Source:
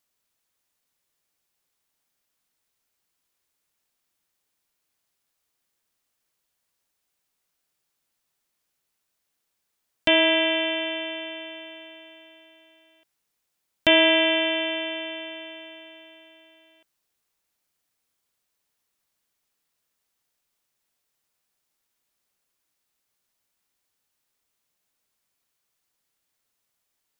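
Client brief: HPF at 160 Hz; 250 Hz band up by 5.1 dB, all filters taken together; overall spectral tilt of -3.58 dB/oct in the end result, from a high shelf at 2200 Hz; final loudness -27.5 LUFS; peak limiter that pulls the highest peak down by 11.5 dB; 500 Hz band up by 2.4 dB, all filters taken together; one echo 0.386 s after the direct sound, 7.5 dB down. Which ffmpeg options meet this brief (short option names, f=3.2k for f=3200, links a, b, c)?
-af "highpass=160,equalizer=f=250:t=o:g=6.5,equalizer=f=500:t=o:g=3,highshelf=f=2.2k:g=-4,alimiter=limit=-16.5dB:level=0:latency=1,aecho=1:1:386:0.422,volume=-1dB"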